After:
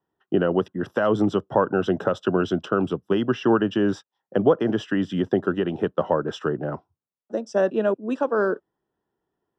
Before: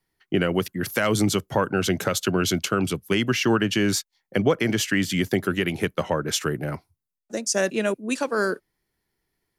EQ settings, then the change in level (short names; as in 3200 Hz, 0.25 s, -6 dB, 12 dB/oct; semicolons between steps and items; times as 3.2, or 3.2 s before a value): running mean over 20 samples; HPF 390 Hz 6 dB/oct; air absorption 89 m; +6.5 dB